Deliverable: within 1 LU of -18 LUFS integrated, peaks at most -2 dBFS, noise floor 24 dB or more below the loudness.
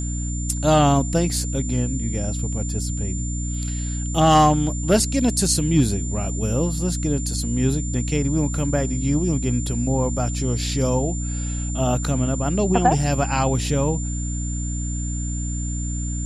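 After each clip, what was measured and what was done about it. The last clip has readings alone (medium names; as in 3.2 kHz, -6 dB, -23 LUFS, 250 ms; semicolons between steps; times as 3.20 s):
hum 60 Hz; highest harmonic 300 Hz; hum level -24 dBFS; steady tone 7.2 kHz; tone level -32 dBFS; loudness -22.0 LUFS; peak level -3.0 dBFS; loudness target -18.0 LUFS
-> hum notches 60/120/180/240/300 Hz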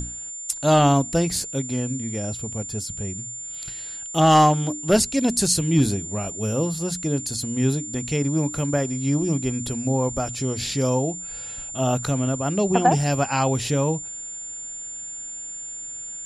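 hum not found; steady tone 7.2 kHz; tone level -32 dBFS
-> band-stop 7.2 kHz, Q 30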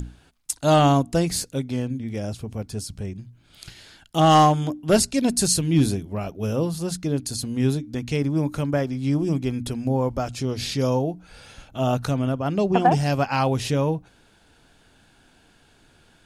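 steady tone not found; loudness -23.0 LUFS; peak level -5.5 dBFS; loudness target -18.0 LUFS
-> trim +5 dB; peak limiter -2 dBFS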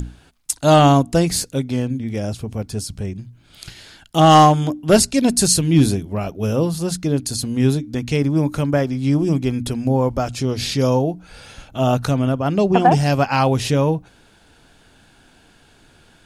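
loudness -18.0 LUFS; peak level -2.0 dBFS; noise floor -53 dBFS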